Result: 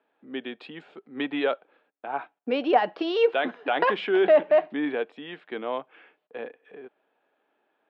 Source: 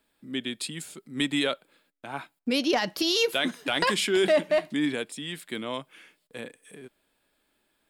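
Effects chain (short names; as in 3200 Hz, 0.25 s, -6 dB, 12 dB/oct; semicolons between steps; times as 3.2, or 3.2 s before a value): speaker cabinet 330–2500 Hz, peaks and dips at 450 Hz +5 dB, 760 Hz +8 dB, 2100 Hz -6 dB; gain +2 dB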